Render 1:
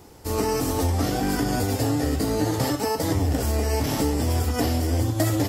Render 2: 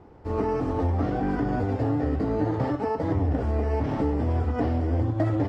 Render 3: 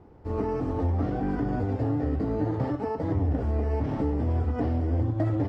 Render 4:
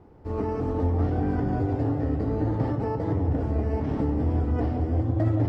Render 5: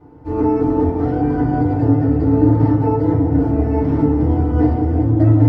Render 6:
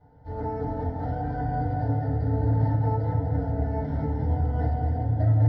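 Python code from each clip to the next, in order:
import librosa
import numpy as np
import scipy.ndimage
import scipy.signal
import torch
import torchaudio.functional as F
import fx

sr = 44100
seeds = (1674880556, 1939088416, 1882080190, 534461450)

y1 = scipy.signal.sosfilt(scipy.signal.butter(2, 1500.0, 'lowpass', fs=sr, output='sos'), x)
y1 = y1 * librosa.db_to_amplitude(-1.5)
y2 = fx.low_shelf(y1, sr, hz=460.0, db=5.0)
y2 = y2 * librosa.db_to_amplitude(-5.5)
y3 = fx.echo_filtered(y2, sr, ms=173, feedback_pct=74, hz=840.0, wet_db=-6)
y4 = fx.rev_fdn(y3, sr, rt60_s=0.32, lf_ratio=1.25, hf_ratio=0.4, size_ms=20.0, drr_db=-7.0)
y4 = y4 * librosa.db_to_amplitude(-1.5)
y5 = fx.fixed_phaser(y4, sr, hz=1700.0, stages=8)
y5 = y5 + 10.0 ** (-6.5 / 20.0) * np.pad(y5, (int(238 * sr / 1000.0), 0))[:len(y5)]
y5 = y5 * librosa.db_to_amplitude(-7.0)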